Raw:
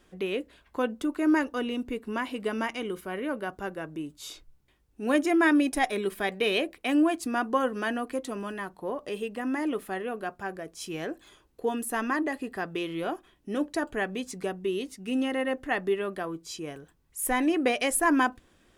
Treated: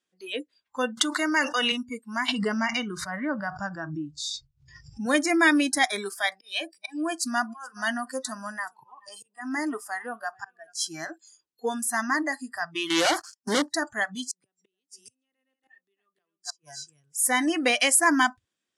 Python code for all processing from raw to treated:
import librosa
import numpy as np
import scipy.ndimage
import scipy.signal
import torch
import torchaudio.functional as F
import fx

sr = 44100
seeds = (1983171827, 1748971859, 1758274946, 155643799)

y = fx.chain(x, sr, fx.weighting(curve='A'),
    fx.env_flatten(amount_pct=70), at=(0.97, 1.72))
y = fx.chain(y, sr, fx.lowpass(hz=6100.0, slope=12),
    fx.low_shelf(hz=190.0, db=11.0),
    fx.pre_swell(db_per_s=38.0), at=(2.28, 5.06))
y = fx.chain(y, sr, fx.auto_swell(attack_ms=355.0),
    fx.echo_single(ms=429, db=-21.0), at=(6.35, 10.88))
y = fx.chain(y, sr, fx.highpass(hz=340.0, slope=6),
    fx.leveller(passes=5), at=(12.9, 13.62))
y = fx.chain(y, sr, fx.echo_single(ms=278, db=-10.5),
    fx.gate_flip(shuts_db=-27.0, range_db=-30),
    fx.band_squash(depth_pct=40), at=(14.27, 17.18))
y = fx.weighting(y, sr, curve='ITU-R 468')
y = fx.noise_reduce_blind(y, sr, reduce_db=26)
y = fx.peak_eq(y, sr, hz=160.0, db=14.0, octaves=2.9)